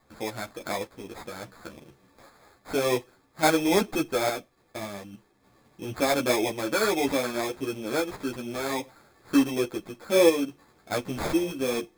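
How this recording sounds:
sample-and-hold tremolo
aliases and images of a low sample rate 2,900 Hz, jitter 0%
a shimmering, thickened sound

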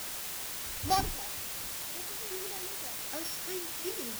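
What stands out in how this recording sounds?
a buzz of ramps at a fixed pitch in blocks of 8 samples
tremolo saw down 1.3 Hz, depth 80%
a quantiser's noise floor 6 bits, dither triangular

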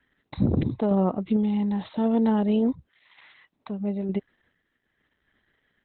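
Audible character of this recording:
sample-and-hold tremolo 2.2 Hz
Opus

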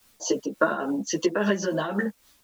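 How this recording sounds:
a quantiser's noise floor 10 bits, dither triangular
tremolo triangle 3.6 Hz, depth 60%
a shimmering, thickened sound

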